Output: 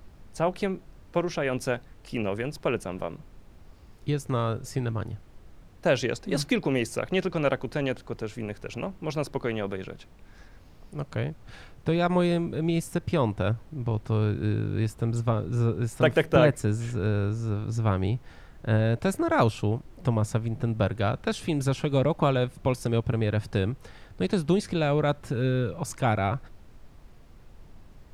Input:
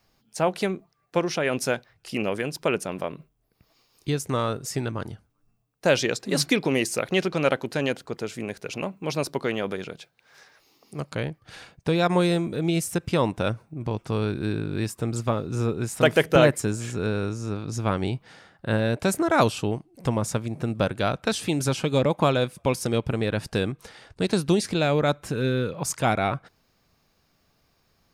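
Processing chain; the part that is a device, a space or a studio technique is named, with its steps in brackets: car interior (peaking EQ 100 Hz +7 dB 0.72 oct; treble shelf 3.4 kHz -7.5 dB; brown noise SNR 20 dB); trim -2.5 dB

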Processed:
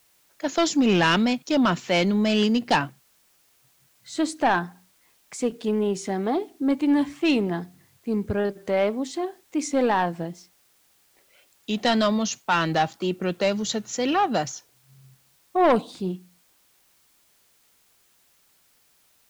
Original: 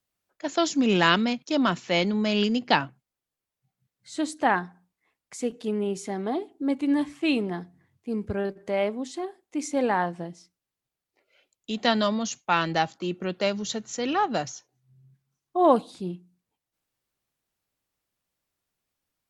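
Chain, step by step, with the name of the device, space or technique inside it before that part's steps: compact cassette (saturation -17 dBFS, distortion -12 dB; low-pass 9.1 kHz; wow and flutter; white noise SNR 37 dB); trim +4.5 dB

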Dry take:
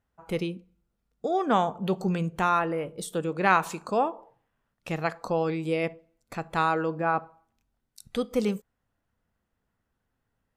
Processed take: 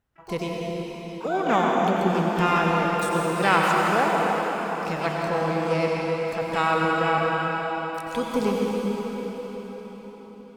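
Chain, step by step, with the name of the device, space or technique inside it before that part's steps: shimmer-style reverb (harmony voices +12 st -10 dB; reverberation RT60 5.4 s, pre-delay 82 ms, DRR -3 dB)

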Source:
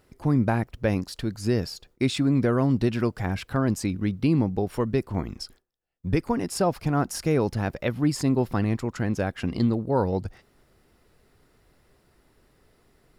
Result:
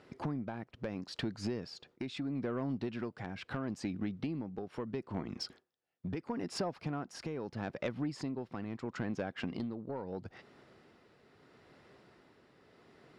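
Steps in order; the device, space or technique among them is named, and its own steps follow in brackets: AM radio (band-pass 150–4300 Hz; compression 10:1, threshold -36 dBFS, peak gain reduction 18.5 dB; saturation -29.5 dBFS, distortion -20 dB; tremolo 0.76 Hz, depth 40%); trim +4.5 dB

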